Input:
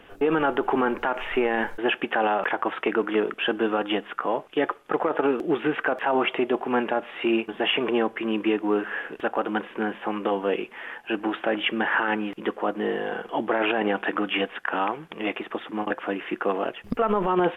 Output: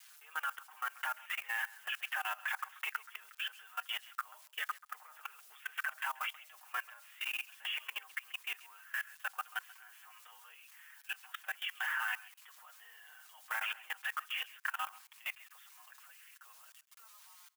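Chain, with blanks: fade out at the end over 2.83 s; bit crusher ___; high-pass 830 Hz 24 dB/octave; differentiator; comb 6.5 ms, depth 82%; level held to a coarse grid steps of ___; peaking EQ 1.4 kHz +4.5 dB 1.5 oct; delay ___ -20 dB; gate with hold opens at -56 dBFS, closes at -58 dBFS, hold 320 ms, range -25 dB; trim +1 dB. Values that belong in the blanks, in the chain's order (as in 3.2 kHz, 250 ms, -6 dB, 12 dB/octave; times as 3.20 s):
8-bit, 20 dB, 134 ms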